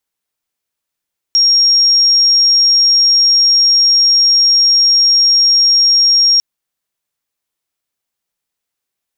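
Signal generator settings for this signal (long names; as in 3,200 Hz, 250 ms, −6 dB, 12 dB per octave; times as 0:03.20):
tone sine 5,580 Hz −6.5 dBFS 5.05 s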